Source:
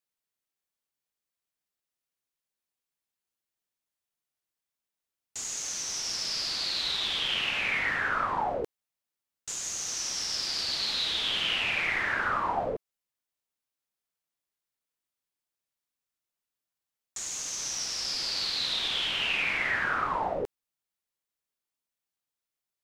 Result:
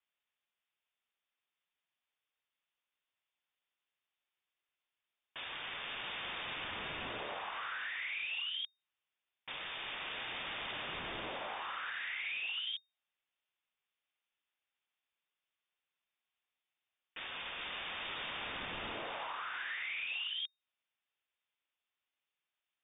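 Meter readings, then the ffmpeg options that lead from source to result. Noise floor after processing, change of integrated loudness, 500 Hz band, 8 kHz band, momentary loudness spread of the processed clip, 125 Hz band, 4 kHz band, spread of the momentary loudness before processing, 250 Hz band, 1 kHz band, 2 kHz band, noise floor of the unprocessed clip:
below −85 dBFS, −11.0 dB, −11.5 dB, below −40 dB, 7 LU, −10.0 dB, −11.0 dB, 9 LU, −9.5 dB, −11.0 dB, −9.0 dB, below −85 dBFS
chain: -filter_complex "[0:a]equalizer=frequency=1000:width_type=o:width=0.77:gain=3,acrossover=split=170|2600[link_01][link_02][link_03];[link_02]asoftclip=type=tanh:threshold=-25.5dB[link_04];[link_01][link_04][link_03]amix=inputs=3:normalize=0,lowpass=frequency=3100:width_type=q:width=0.5098,lowpass=frequency=3100:width_type=q:width=0.6013,lowpass=frequency=3100:width_type=q:width=0.9,lowpass=frequency=3100:width_type=q:width=2.563,afreqshift=-3700,acompressor=threshold=-42dB:ratio=10,highshelf=frequency=2900:gain=7.5,volume=1.5dB"

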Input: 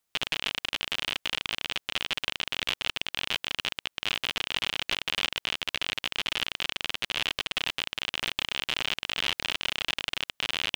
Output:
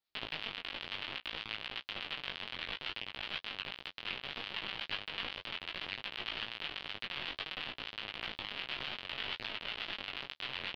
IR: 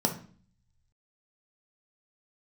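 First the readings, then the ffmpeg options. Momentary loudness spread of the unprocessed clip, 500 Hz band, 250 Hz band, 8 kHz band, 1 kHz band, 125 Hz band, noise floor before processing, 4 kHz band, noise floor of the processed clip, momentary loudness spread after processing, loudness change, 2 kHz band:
2 LU, −7.5 dB, −7.5 dB, below −25 dB, −8.0 dB, −7.5 dB, −80 dBFS, −10.5 dB, −64 dBFS, 2 LU, −10.0 dB, −9.0 dB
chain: -filter_complex "[0:a]acrossover=split=2500[link_01][link_02];[link_02]acompressor=threshold=-37dB:ratio=4:attack=1:release=60[link_03];[link_01][link_03]amix=inputs=2:normalize=0,acrossover=split=900[link_04][link_05];[link_04]aeval=exprs='val(0)*(1-0.5/2+0.5/2*cos(2*PI*8.2*n/s))':channel_layout=same[link_06];[link_05]aeval=exprs='val(0)*(1-0.5/2-0.5/2*cos(2*PI*8.2*n/s))':channel_layout=same[link_07];[link_06][link_07]amix=inputs=2:normalize=0,flanger=delay=18.5:depth=3.5:speed=0.62,highshelf=frequency=5600:width_type=q:width=3:gain=-9,flanger=delay=8.6:depth=7.8:regen=-21:speed=2:shape=sinusoidal,volume=1dB"

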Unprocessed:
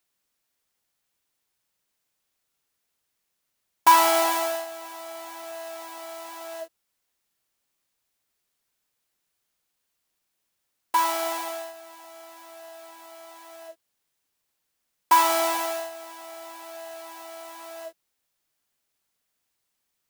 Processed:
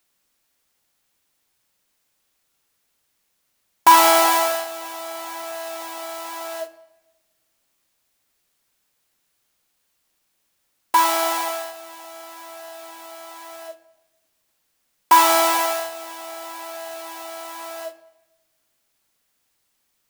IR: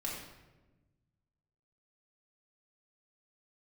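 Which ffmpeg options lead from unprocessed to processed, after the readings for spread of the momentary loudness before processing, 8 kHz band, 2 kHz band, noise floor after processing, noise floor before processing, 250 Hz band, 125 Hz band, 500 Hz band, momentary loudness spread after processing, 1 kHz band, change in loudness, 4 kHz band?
22 LU, +6.5 dB, +6.0 dB, −71 dBFS, −79 dBFS, +5.5 dB, can't be measured, +4.5 dB, 24 LU, +5.0 dB, +2.5 dB, +6.5 dB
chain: -filter_complex "[0:a]asoftclip=type=tanh:threshold=-10dB,asplit=2[link_01][link_02];[1:a]atrim=start_sample=2205[link_03];[link_02][link_03]afir=irnorm=-1:irlink=0,volume=-12dB[link_04];[link_01][link_04]amix=inputs=2:normalize=0,volume=6dB"

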